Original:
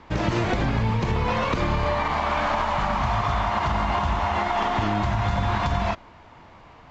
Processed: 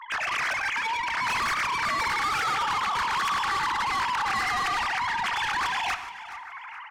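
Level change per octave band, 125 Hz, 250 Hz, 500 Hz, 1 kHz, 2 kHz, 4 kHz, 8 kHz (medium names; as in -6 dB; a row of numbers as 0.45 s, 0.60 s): -22.5 dB, -17.5 dB, -15.5 dB, -1.5 dB, +4.0 dB, +3.5 dB, no reading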